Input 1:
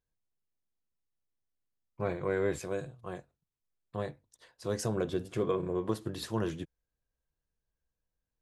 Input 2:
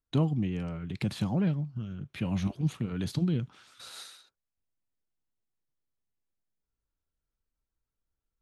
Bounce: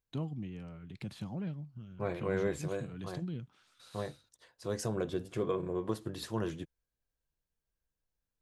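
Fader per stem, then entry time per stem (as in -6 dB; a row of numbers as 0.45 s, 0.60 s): -2.5 dB, -11.0 dB; 0.00 s, 0.00 s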